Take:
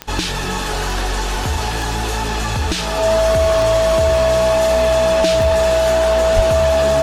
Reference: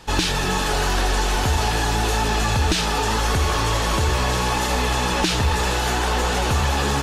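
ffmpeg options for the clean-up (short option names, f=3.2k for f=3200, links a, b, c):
-filter_complex "[0:a]adeclick=t=4,bandreject=f=650:w=30,asplit=3[a][b][c];[a]afade=t=out:st=6.35:d=0.02[d];[b]highpass=f=140:w=0.5412,highpass=f=140:w=1.3066,afade=t=in:st=6.35:d=0.02,afade=t=out:st=6.47:d=0.02[e];[c]afade=t=in:st=6.47:d=0.02[f];[d][e][f]amix=inputs=3:normalize=0"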